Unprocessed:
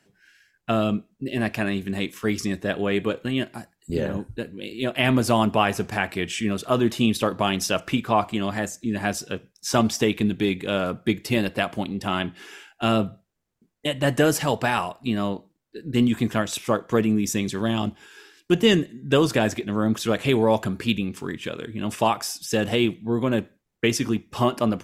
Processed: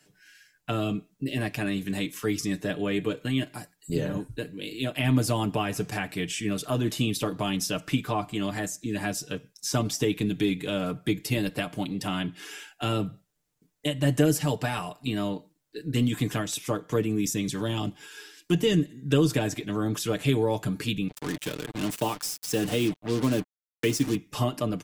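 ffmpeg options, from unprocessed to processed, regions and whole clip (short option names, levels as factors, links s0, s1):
-filter_complex "[0:a]asettb=1/sr,asplit=3[s0][s1][s2];[s0]atrim=end=21.084[s3];[s1]atrim=start=21.08:end=24.15,asetpts=PTS-STARTPTS,afade=t=in:d=0.004:c=qsin,afade=t=out:st=3.066:d=0.004:c=qsin,highpass=f=120:p=1,adynamicequalizer=threshold=0.0224:dfrequency=250:dqfactor=0.76:tfrequency=250:tqfactor=0.76:attack=5:release=100:ratio=0.375:range=2:mode=boostabove:tftype=bell,acrusher=bits=4:mix=0:aa=0.5[s4];[s2]atrim=start=24.146[s5];[s3][s4]acrossfade=d=0.004:c1=hsin:c2=qsin[s6];[s6][s5]acrossfade=d=0.004:c1=qsin:c2=hsin,highshelf=f=3600:g=9,aecho=1:1:6.7:0.65,acrossover=split=360[s7][s8];[s8]acompressor=threshold=0.0224:ratio=2[s9];[s7][s9]amix=inputs=2:normalize=0,volume=0.75"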